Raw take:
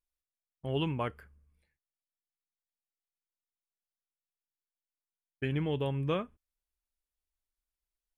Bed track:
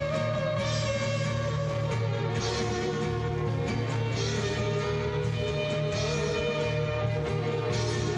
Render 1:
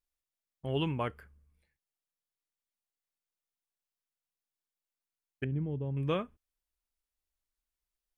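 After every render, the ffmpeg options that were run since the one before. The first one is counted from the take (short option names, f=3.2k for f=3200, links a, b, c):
-filter_complex "[0:a]asettb=1/sr,asplit=3[a][b][c];[a]atrim=end=5.444[d];[b]atrim=start=5.44:end=5.97,asetpts=PTS-STARTPTS,afade=t=in:d=0.004:c=qsin,afade=t=out:st=0.526:d=0.004:c=qsin,bandpass=f=120:t=q:w=0.63[e];[c]atrim=start=5.966[f];[d][e]acrossfade=d=0.004:c1=hsin:c2=qsin[g];[g][f]acrossfade=d=0.004:c1=qsin:c2=hsin"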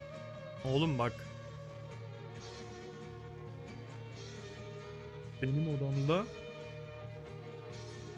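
-filter_complex "[1:a]volume=-18.5dB[a];[0:a][a]amix=inputs=2:normalize=0"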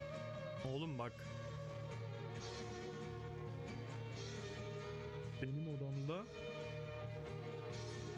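-af "acompressor=threshold=-42dB:ratio=5"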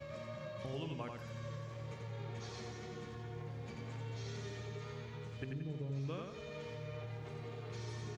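-af "aecho=1:1:88|176|264|352|440:0.631|0.246|0.096|0.0374|0.0146"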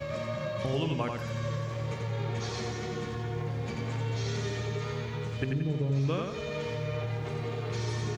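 -af "volume=12dB"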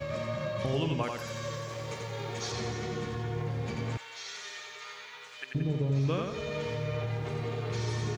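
-filter_complex "[0:a]asettb=1/sr,asplit=3[a][b][c];[a]atrim=end=1.034[d];[b]atrim=start=1.03:end=2.52,asetpts=PTS-STARTPTS,afade=t=in:d=0.004:c=qsin,afade=t=out:st=1.486:d=0.004:c=qsin,bass=f=250:g=-8,treble=f=4k:g=7[e];[c]atrim=start=2.516[f];[d][e]acrossfade=d=0.004:c1=hsin:c2=qsin[g];[g][f]acrossfade=d=0.004:c1=qsin:c2=hsin,asettb=1/sr,asplit=3[h][i][j];[h]atrim=end=3.974[k];[i]atrim=start=3.97:end=5.55,asetpts=PTS-STARTPTS,afade=t=in:d=0.004:c=qsin,afade=t=out:st=1.576:d=0.004:c=qsin,highpass=1.3k[l];[j]atrim=start=5.546[m];[k][l]acrossfade=d=0.004:c1=hsin:c2=qsin[n];[n][m]acrossfade=d=0.004:c1=qsin:c2=hsin"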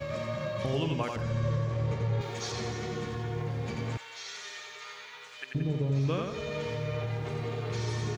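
-filter_complex "[0:a]asettb=1/sr,asplit=3[a][b][c];[a]atrim=end=1.164[d];[b]atrim=start=1.16:end=2.21,asetpts=PTS-STARTPTS,afade=t=in:d=0.004:c=qsin,afade=t=out:st=1.046:d=0.004:c=qsin,aemphasis=mode=reproduction:type=riaa[e];[c]atrim=start=2.206[f];[d][e]acrossfade=d=0.004:c1=hsin:c2=qsin[g];[g][f]acrossfade=d=0.004:c1=qsin:c2=hsin"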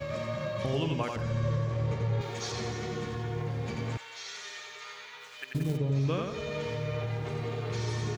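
-filter_complex "[0:a]asplit=3[a][b][c];[a]afade=t=out:st=5.19:d=0.02[d];[b]acrusher=bits=5:mode=log:mix=0:aa=0.000001,afade=t=in:st=5.19:d=0.02,afade=t=out:st=5.76:d=0.02[e];[c]afade=t=in:st=5.76:d=0.02[f];[d][e][f]amix=inputs=3:normalize=0"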